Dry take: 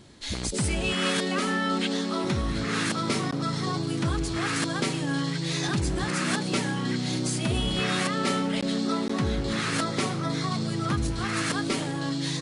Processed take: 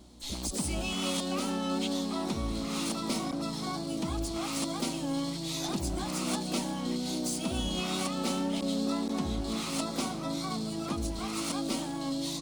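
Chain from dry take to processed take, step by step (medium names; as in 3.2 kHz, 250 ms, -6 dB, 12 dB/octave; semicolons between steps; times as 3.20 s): mains buzz 60 Hz, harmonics 6, -50 dBFS -5 dB/octave; static phaser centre 450 Hz, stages 6; wow and flutter 22 cents; harmony voices +12 st -11 dB; trim -2.5 dB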